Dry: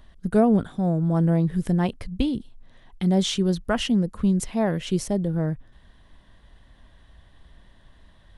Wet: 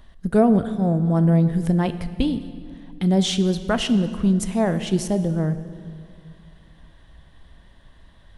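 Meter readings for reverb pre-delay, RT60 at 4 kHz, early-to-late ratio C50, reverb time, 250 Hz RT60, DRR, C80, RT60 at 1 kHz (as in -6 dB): 4 ms, 1.7 s, 12.5 dB, 2.3 s, 2.7 s, 11.0 dB, 13.5 dB, 2.1 s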